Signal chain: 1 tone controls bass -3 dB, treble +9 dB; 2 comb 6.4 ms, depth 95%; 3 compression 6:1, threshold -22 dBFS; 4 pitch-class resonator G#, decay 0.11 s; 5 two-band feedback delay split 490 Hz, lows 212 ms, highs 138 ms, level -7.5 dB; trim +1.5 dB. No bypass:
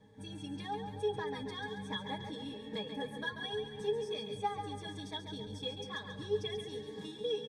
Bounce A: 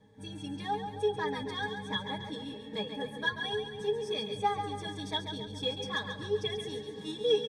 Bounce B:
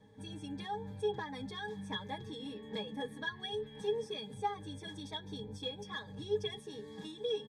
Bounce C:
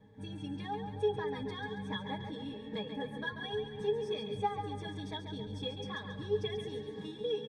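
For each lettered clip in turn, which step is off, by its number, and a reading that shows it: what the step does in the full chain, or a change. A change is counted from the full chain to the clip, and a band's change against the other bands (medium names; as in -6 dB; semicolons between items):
3, mean gain reduction 3.5 dB; 5, echo-to-direct -6.0 dB to none; 1, loudness change +1.5 LU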